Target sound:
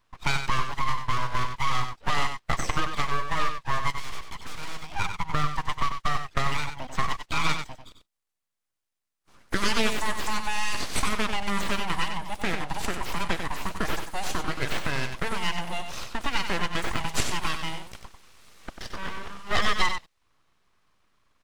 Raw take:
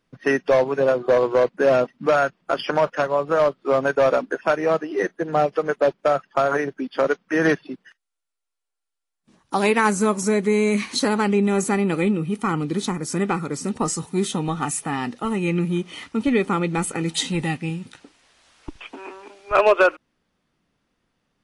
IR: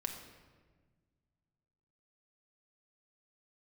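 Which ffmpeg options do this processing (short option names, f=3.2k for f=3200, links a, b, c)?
-filter_complex "[0:a]highpass=f=550:t=q:w=4.9,acrossover=split=1800[a][b];[a]acompressor=threshold=-27dB:ratio=5[c];[c][b]amix=inputs=2:normalize=0,asettb=1/sr,asplit=3[d][e][f];[d]atrim=end=3.904[g];[e]atrim=start=3.9:end=4.87,asetpts=PTS-STARTPTS,afade=t=in:d=0.004:c=qsin,afade=t=out:st=0.966:d=0.004:c=qsin,volume=31dB,asoftclip=hard,volume=-31dB[h];[f]atrim=start=4.866[i];[g][h]acrossfade=d=0.004:c1=hsin:c2=qsin[j];[j][i]acrossfade=d=0.004:c1=qsin:c2=hsin,asettb=1/sr,asplit=3[k][l][m];[k]atrim=end=7.034[n];[l]atrim=start=7.03:end=7.48,asetpts=PTS-STARTPTS,afade=t=in:d=0.004:c=qsin,afade=t=out:st=0.446:d=0.004:c=qsin,afreqshift=23[o];[m]atrim=start=7.476[p];[n][o]acrossfade=d=0.004:c1=hsin:c2=qsin[q];[q][p]acrossfade=d=0.004:c1=qsin:c2=hsin,aeval=exprs='abs(val(0))':c=same,acrossover=split=9000[r][s];[s]acompressor=threshold=-52dB:ratio=4:attack=1:release=60[t];[r][t]amix=inputs=2:normalize=0,asplit=2[u][v];[v]aecho=0:1:94:0.422[w];[u][w]amix=inputs=2:normalize=0,volume=2.5dB"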